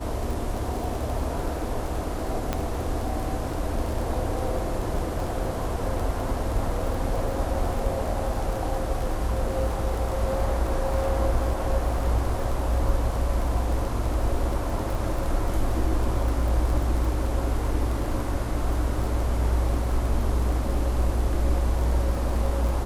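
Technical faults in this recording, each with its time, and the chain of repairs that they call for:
surface crackle 22 per second −29 dBFS
0:02.53: click −11 dBFS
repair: click removal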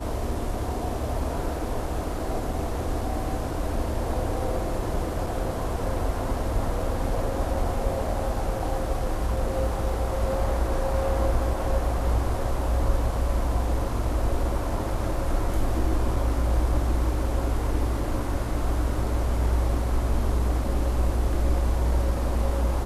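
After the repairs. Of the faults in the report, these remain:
none of them is left

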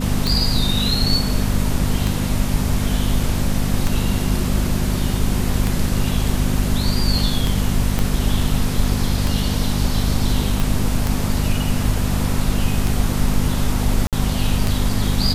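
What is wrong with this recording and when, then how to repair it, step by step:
mains hum 50 Hz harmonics 5 −22 dBFS
scratch tick 33 1/3 rpm
0:07.99: click −6 dBFS
0:10.60: click
0:14.07–0:14.13: drop-out 57 ms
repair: click removal
hum removal 50 Hz, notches 5
repair the gap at 0:14.07, 57 ms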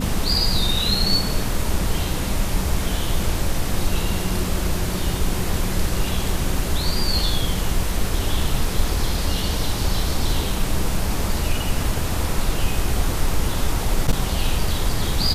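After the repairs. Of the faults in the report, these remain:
0:07.99: click
0:10.60: click

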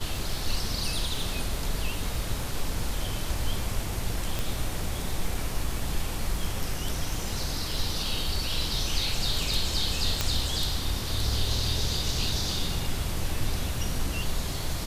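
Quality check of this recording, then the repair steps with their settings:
surface crackle 23 per second −35 dBFS
0:04.39: click
0:10.21: click −9 dBFS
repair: click removal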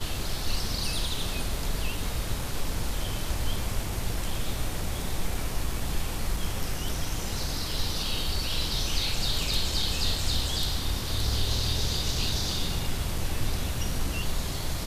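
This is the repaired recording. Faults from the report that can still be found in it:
none of them is left

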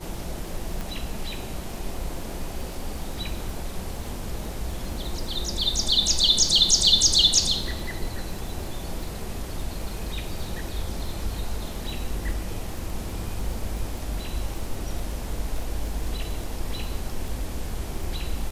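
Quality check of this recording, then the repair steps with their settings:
surface crackle 26 per second −32 dBFS
0:00.81: click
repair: click removal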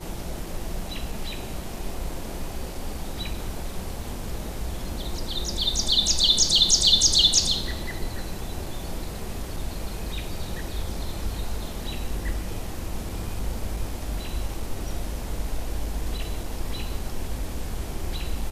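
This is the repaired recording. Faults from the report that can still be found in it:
0:00.81: click

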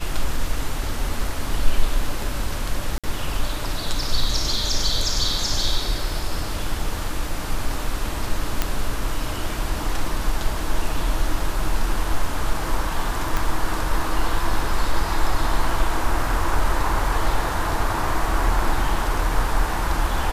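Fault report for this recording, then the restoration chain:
0:02.98–0:03.04: drop-out 56 ms
0:08.62: click −5 dBFS
0:13.37: click −9 dBFS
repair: click removal
repair the gap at 0:02.98, 56 ms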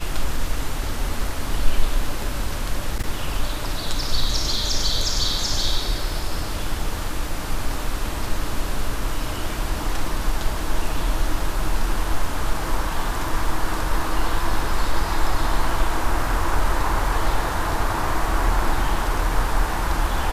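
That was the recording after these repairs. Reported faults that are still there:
0:13.37: click

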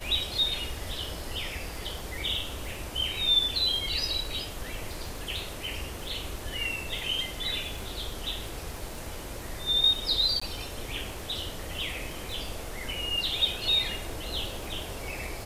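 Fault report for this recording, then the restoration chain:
surface crackle 26 per second −36 dBFS
0:10.40–0:10.41: drop-out 15 ms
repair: click removal
repair the gap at 0:10.40, 15 ms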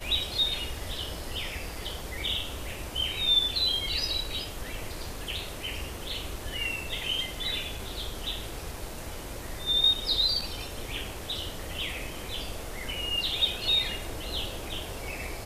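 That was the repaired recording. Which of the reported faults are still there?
none of them is left

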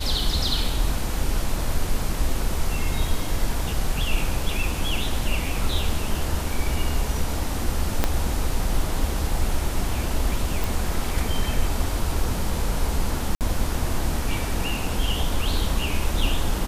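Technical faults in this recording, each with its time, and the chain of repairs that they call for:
0:08.04: click −5 dBFS
0:10.64: click
0:13.35–0:13.41: drop-out 58 ms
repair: click removal
repair the gap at 0:13.35, 58 ms

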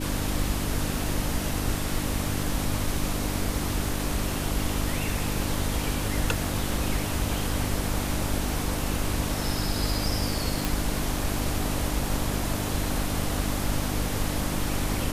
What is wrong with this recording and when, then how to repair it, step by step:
mains hum 50 Hz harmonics 6 −32 dBFS
0:10.65: click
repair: click removal
hum removal 50 Hz, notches 6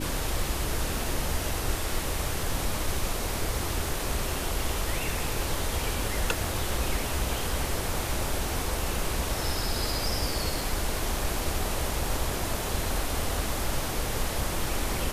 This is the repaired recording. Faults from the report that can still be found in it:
none of them is left

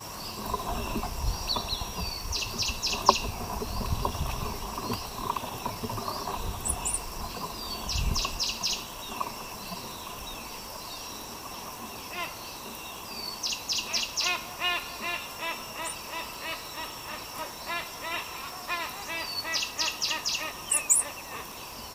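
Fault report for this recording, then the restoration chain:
surface crackle 50 per second −39 dBFS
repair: click removal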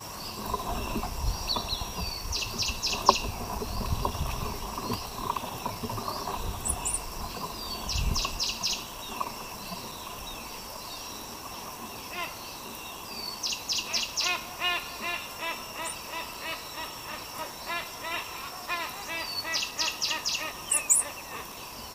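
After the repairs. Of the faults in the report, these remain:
none of them is left

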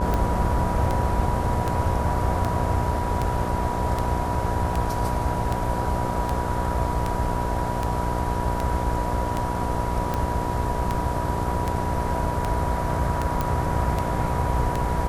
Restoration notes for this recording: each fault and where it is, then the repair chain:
mains buzz 60 Hz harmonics 16 −29 dBFS
scratch tick 78 rpm −12 dBFS
whistle 970 Hz −29 dBFS
0:13.41: click −11 dBFS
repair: click removal
notch filter 970 Hz, Q 30
hum removal 60 Hz, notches 16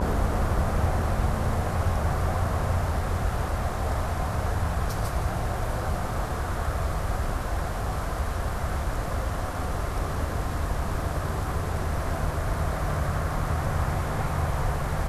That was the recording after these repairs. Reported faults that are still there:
none of them is left

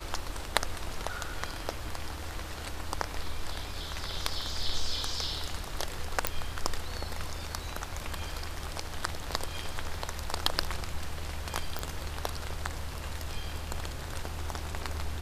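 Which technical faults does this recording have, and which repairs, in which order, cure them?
0:06.27: click −8 dBFS
0:11.79: click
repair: click removal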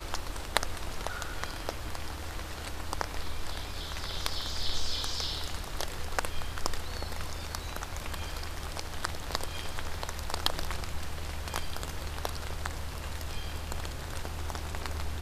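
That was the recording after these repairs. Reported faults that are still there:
0:06.27: click

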